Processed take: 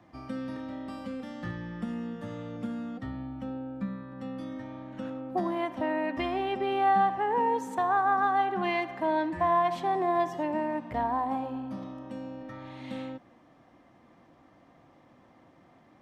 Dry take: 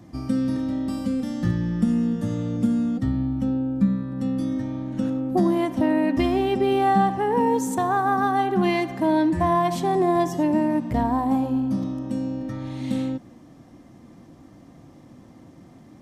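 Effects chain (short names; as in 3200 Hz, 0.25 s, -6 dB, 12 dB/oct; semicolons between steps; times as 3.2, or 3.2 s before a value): three-band isolator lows -13 dB, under 510 Hz, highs -16 dB, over 3500 Hz; gain -2 dB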